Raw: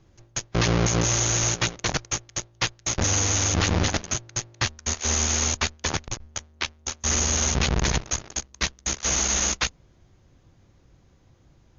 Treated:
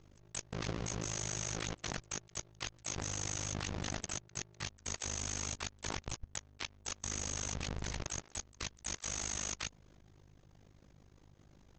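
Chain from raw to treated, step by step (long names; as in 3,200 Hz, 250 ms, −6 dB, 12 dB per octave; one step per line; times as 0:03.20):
pitch-shifted copies added +3 semitones −12 dB
amplitude modulation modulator 51 Hz, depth 85%
output level in coarse steps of 22 dB
level +4 dB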